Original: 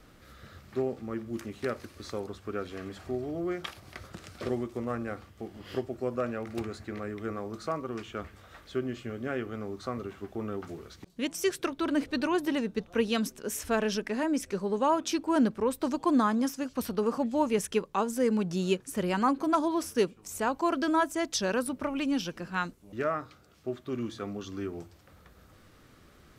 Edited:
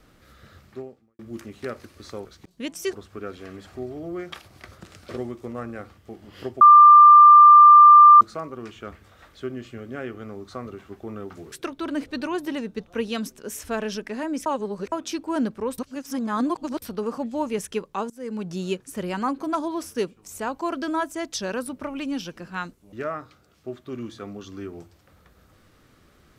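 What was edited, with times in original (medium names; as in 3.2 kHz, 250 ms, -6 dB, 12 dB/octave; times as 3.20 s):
0.64–1.19 s: fade out quadratic
5.93–7.53 s: bleep 1.19 kHz -6 dBFS
10.84–11.52 s: move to 2.25 s
14.46–14.92 s: reverse
15.78–16.82 s: reverse
18.10–18.50 s: fade in, from -24 dB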